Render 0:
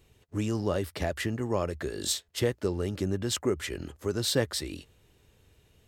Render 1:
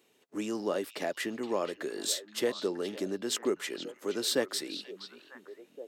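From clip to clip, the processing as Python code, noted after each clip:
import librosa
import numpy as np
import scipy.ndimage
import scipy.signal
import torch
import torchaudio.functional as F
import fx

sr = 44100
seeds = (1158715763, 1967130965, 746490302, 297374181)

y = scipy.signal.sosfilt(scipy.signal.butter(4, 230.0, 'highpass', fs=sr, output='sos'), x)
y = fx.echo_stepped(y, sr, ms=473, hz=3400.0, octaves=-1.4, feedback_pct=70, wet_db=-8.0)
y = y * librosa.db_to_amplitude(-1.5)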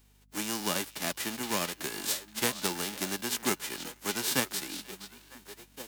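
y = fx.envelope_flatten(x, sr, power=0.3)
y = fx.add_hum(y, sr, base_hz=50, snr_db=29)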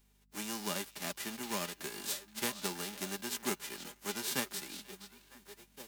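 y = x + 0.4 * np.pad(x, (int(5.0 * sr / 1000.0), 0))[:len(x)]
y = y * librosa.db_to_amplitude(-7.0)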